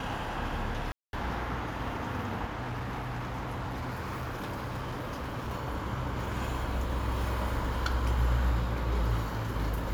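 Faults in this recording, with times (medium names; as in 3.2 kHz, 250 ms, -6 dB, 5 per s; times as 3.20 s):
0.92–1.13 s: dropout 211 ms
2.52–5.53 s: clipped -31.5 dBFS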